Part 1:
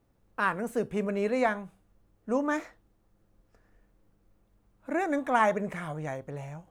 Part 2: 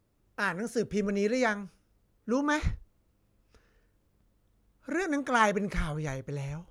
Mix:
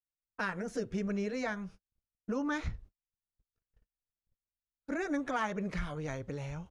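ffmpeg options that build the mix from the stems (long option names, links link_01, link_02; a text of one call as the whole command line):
ffmpeg -i stem1.wav -i stem2.wav -filter_complex "[0:a]aemphasis=mode=reproduction:type=bsi,acompressor=threshold=-46dB:ratio=1.5,volume=-8dB[link_01];[1:a]lowpass=6900,acompressor=threshold=-36dB:ratio=3,adelay=11,volume=1.5dB[link_02];[link_01][link_02]amix=inputs=2:normalize=0,agate=range=-44dB:threshold=-50dB:ratio=16:detection=peak" out.wav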